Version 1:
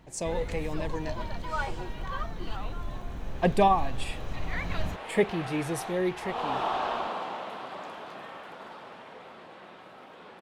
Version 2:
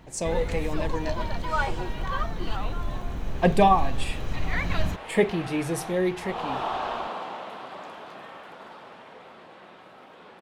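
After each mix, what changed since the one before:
speech: send +11.5 dB; first sound +5.5 dB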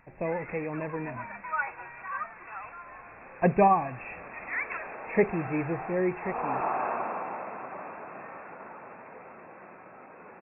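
speech: send -7.5 dB; first sound: add HPF 1200 Hz 12 dB/oct; master: add brick-wall FIR low-pass 2700 Hz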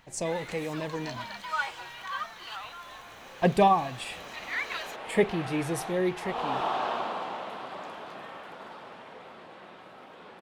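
master: remove brick-wall FIR low-pass 2700 Hz

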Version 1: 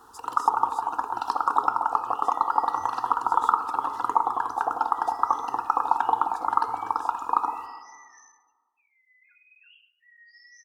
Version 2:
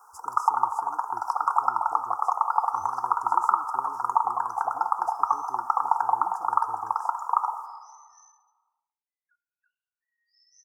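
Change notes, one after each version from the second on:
first sound: add HPF 670 Hz 24 dB/oct; master: add inverse Chebyshev band-stop 2000–4000 Hz, stop band 40 dB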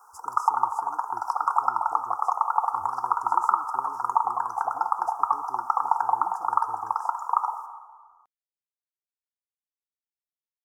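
second sound: muted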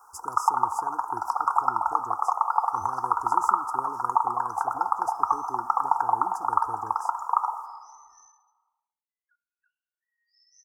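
speech +8.0 dB; second sound: unmuted

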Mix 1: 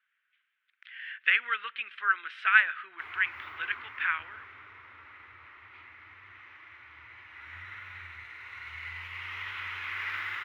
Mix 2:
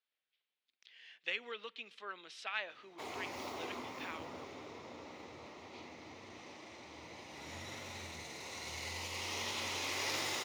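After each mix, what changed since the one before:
speech -10.0 dB; master: remove EQ curve 110 Hz 0 dB, 150 Hz -24 dB, 360 Hz -14 dB, 530 Hz -19 dB, 760 Hz -14 dB, 1500 Hz +14 dB, 3100 Hz -2 dB, 4500 Hz -18 dB, 6600 Hz -26 dB, 16000 Hz -13 dB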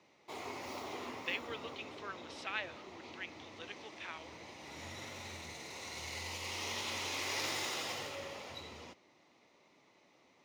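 background: entry -2.70 s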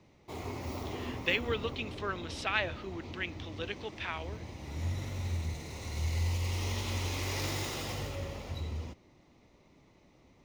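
speech +9.0 dB; master: remove weighting filter A

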